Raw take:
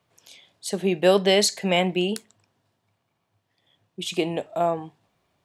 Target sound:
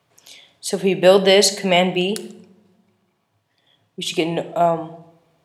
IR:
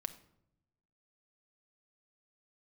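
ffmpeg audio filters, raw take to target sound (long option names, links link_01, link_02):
-filter_complex "[0:a]asplit=2[link_01][link_02];[1:a]atrim=start_sample=2205,asetrate=34398,aresample=44100,lowshelf=frequency=86:gain=-8.5[link_03];[link_02][link_03]afir=irnorm=-1:irlink=0,volume=10dB[link_04];[link_01][link_04]amix=inputs=2:normalize=0,volume=-6.5dB"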